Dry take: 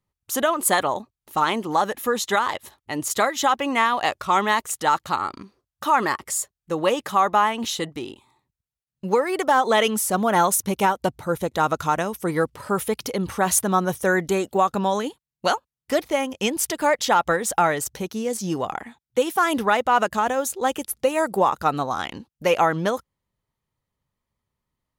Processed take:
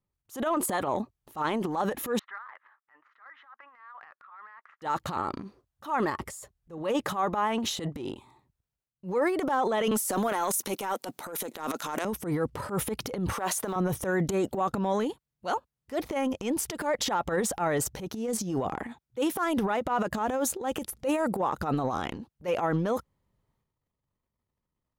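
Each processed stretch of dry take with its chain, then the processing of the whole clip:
0:02.19–0:04.82: high-frequency loss of the air 300 metres + downward compressor 3 to 1, threshold −36 dBFS + flat-topped band-pass 1,500 Hz, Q 1.9
0:06.10–0:06.78: low-shelf EQ 120 Hz +8.5 dB + downward compressor 12 to 1, threshold −29 dBFS
0:09.91–0:12.05: high-pass filter 220 Hz 24 dB per octave + spectral tilt +2.5 dB per octave + transient designer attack −11 dB, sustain +9 dB
0:13.33–0:13.76: mu-law and A-law mismatch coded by mu + high-pass filter 460 Hz
whole clip: tilt shelving filter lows +4.5 dB, about 1,400 Hz; transient designer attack −11 dB, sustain +10 dB; brickwall limiter −10.5 dBFS; level −7.5 dB

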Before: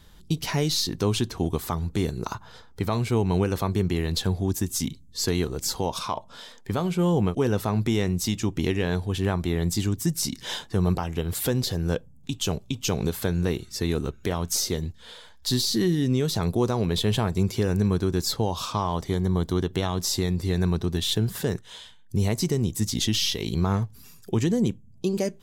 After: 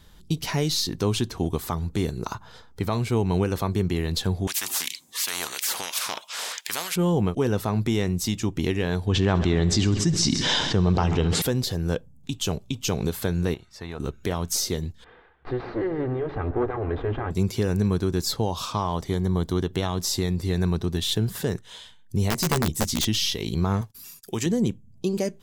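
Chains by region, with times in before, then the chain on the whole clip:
0:04.47–0:06.96: auto-filter high-pass sine 2.9 Hz 750–2,600 Hz + every bin compressed towards the loudest bin 4 to 1
0:09.07–0:11.42: low-pass filter 6,500 Hz 24 dB per octave + echo machine with several playback heads 67 ms, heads first and second, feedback 63%, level −19.5 dB + envelope flattener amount 70%
0:13.54–0:14.00: low-pass filter 1,300 Hz 6 dB per octave + low shelf with overshoot 530 Hz −10 dB, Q 1.5
0:15.04–0:17.31: lower of the sound and its delayed copy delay 2.5 ms + low-pass filter 2,000 Hz 24 dB per octave + feedback echo with a swinging delay time 137 ms, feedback 60%, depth 142 cents, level −14 dB
0:22.30–0:23.05: wrap-around overflow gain 16 dB + double-tracking delay 13 ms −4 dB
0:23.81–0:24.46: spectral tilt +2.5 dB per octave + noise gate −51 dBFS, range −26 dB
whole clip: no processing

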